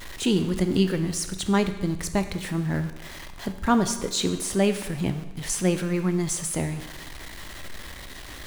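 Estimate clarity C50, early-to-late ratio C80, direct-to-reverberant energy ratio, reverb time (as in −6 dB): 10.0 dB, 12.0 dB, 8.0 dB, 1.1 s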